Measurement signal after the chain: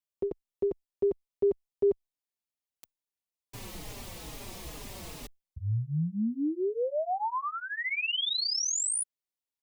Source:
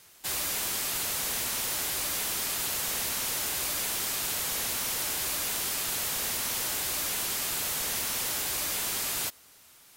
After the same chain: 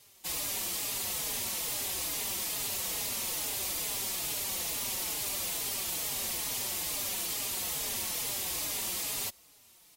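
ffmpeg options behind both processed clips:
-filter_complex "[0:a]equalizer=f=1500:t=o:w=0.55:g=-8.5,asplit=2[s0][s1];[s1]adelay=4.4,afreqshift=-2.3[s2];[s0][s2]amix=inputs=2:normalize=1"

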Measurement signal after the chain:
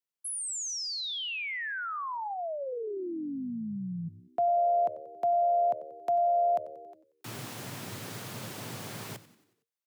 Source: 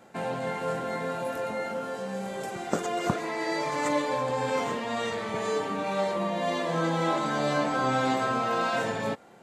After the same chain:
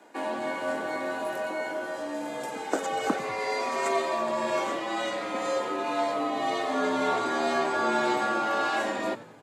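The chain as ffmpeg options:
-filter_complex "[0:a]aeval=exprs='0.335*(cos(1*acos(clip(val(0)/0.335,-1,1)))-cos(1*PI/2))+0.00473*(cos(2*acos(clip(val(0)/0.335,-1,1)))-cos(2*PI/2))':c=same,asplit=6[s0][s1][s2][s3][s4][s5];[s1]adelay=92,afreqshift=-75,volume=0.15[s6];[s2]adelay=184,afreqshift=-150,volume=0.0776[s7];[s3]adelay=276,afreqshift=-225,volume=0.0403[s8];[s4]adelay=368,afreqshift=-300,volume=0.0211[s9];[s5]adelay=460,afreqshift=-375,volume=0.011[s10];[s0][s6][s7][s8][s9][s10]amix=inputs=6:normalize=0,afreqshift=98"

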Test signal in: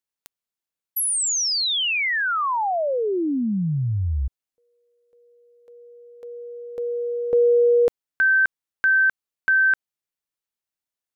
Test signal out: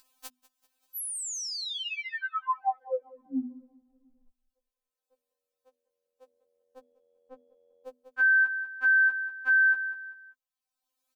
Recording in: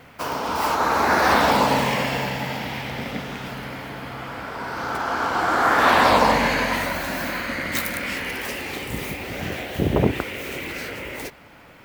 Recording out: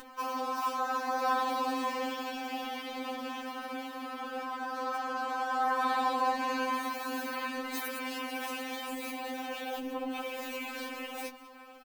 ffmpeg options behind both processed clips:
-af "bandreject=f=2000:w=5.9,aecho=1:1:194|388|582:0.0944|0.0321|0.0109,acompressor=threshold=0.0251:ratio=2.5:attack=5.7:release=55:knee=1:detection=peak,equalizer=f=900:w=2.1:g=7.5,acompressor=mode=upward:threshold=0.00501:ratio=2.5:attack=38:release=900:knee=2.83:detection=peak,bandreject=f=50:t=h:w=6,bandreject=f=100:t=h:w=6,bandreject=f=150:t=h:w=6,bandreject=f=200:t=h:w=6,bandreject=f=250:t=h:w=6,afftfilt=real='re*3.46*eq(mod(b,12),0)':imag='im*3.46*eq(mod(b,12),0)':win_size=2048:overlap=0.75,volume=0.668"

